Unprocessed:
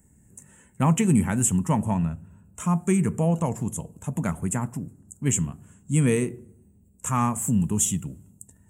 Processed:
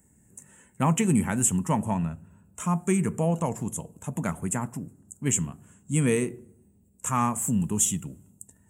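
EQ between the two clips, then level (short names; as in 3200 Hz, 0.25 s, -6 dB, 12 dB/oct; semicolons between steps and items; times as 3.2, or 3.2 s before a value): low shelf 150 Hz -7.5 dB; 0.0 dB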